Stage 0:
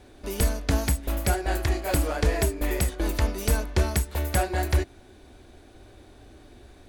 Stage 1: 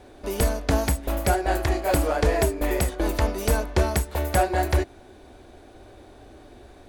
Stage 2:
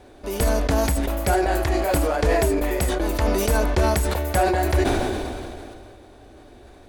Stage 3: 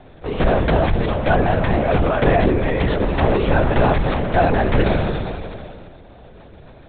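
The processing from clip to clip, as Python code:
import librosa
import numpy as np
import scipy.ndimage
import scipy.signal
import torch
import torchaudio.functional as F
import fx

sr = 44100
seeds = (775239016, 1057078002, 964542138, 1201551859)

y1 = fx.peak_eq(x, sr, hz=670.0, db=6.5, octaves=2.1)
y2 = fx.sustainer(y1, sr, db_per_s=24.0)
y3 = fx.lpc_vocoder(y2, sr, seeds[0], excitation='whisper', order=10)
y3 = y3 * librosa.db_to_amplitude(4.0)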